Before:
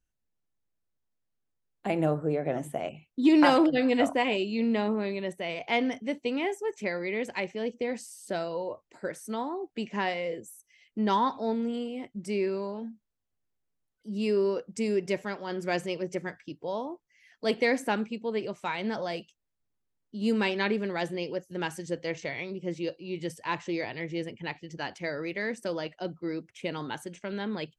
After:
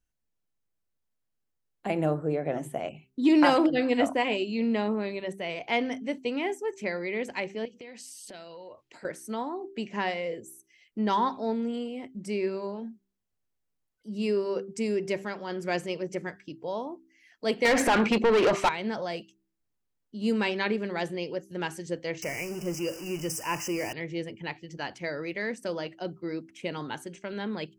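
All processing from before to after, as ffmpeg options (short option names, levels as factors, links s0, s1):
-filter_complex "[0:a]asettb=1/sr,asplit=3[s0][s1][s2];[s0]atrim=end=7.654[s3];[s1]atrim=start=7.65:end=9.05,asetpts=PTS-STARTPTS,afade=t=in:d=0.004:c=qsin,afade=t=out:st=1.396:d=0.004:c=qsin,acompressor=threshold=0.00708:ratio=6:attack=3.2:release=140:knee=1:detection=peak,equalizer=f=3200:t=o:w=1.6:g=10[s4];[s2]atrim=start=9.046[s5];[s3][s4]acrossfade=d=0.004:c1=hsin:c2=qsin[s6];[s6][s5]acrossfade=d=0.004:c1=qsin:c2=hsin,asettb=1/sr,asplit=3[s7][s8][s9];[s7]atrim=end=17.654[s10];[s8]atrim=start=17.65:end=18.69,asetpts=PTS-STARTPTS,afade=t=in:d=0.004:c=qsin,afade=t=out:st=1.036:d=0.004:c=qsin,highshelf=f=4900:g=-10.5,acompressor=threshold=0.0282:ratio=16:attack=3.2:release=140:knee=1:detection=peak,asplit=2[s11][s12];[s12]highpass=f=720:p=1,volume=56.2,asoftclip=type=tanh:threshold=0.224[s13];[s11][s13]amix=inputs=2:normalize=0,lowpass=f=4600:p=1,volume=0.501[s14];[s9]atrim=start=18.686[s15];[s10][s14]acrossfade=d=0.004:c1=hsin:c2=qsin[s16];[s16][s15]acrossfade=d=0.004:c1=qsin:c2=hsin,asettb=1/sr,asplit=3[s17][s18][s19];[s17]atrim=end=22.224[s20];[s18]atrim=start=22.22:end=23.93,asetpts=PTS-STARTPTS,afade=t=in:d=0.004:c=qsin,afade=t=out:st=1.706:d=0.004:c=qsin,aeval=exprs='val(0)+0.5*0.0119*sgn(val(0))':c=same,asuperstop=centerf=3800:order=20:qfactor=2.1,highshelf=f=2800:t=q:w=1.5:g=7.5[s21];[s19]atrim=start=23.926[s22];[s20][s21]acrossfade=d=0.004:c1=hsin:c2=qsin[s23];[s23][s22]acrossfade=d=0.004:c1=qsin:c2=hsin,bandreject=f=3600:w=28,bandreject=f=65.1:t=h:w=4,bandreject=f=130.2:t=h:w=4,bandreject=f=195.3:t=h:w=4,bandreject=f=260.4:t=h:w=4,bandreject=f=325.5:t=h:w=4,bandreject=f=390.6:t=h:w=4"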